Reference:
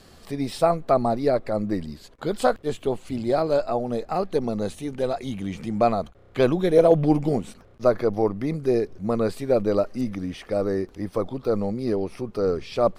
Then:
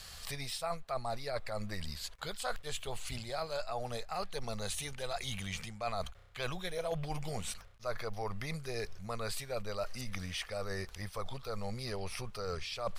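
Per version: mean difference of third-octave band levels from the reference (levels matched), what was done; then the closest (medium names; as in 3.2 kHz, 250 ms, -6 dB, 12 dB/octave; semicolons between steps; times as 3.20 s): 11.0 dB: amplifier tone stack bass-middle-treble 10-0-10; reverse; compression 6:1, threshold -42 dBFS, peak gain reduction 15 dB; reverse; trim +8 dB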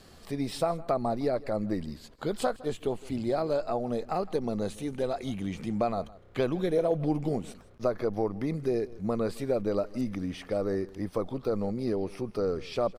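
2.5 dB: compression 2.5:1, threshold -23 dBFS, peak gain reduction 8.5 dB; delay 161 ms -20.5 dB; trim -3 dB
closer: second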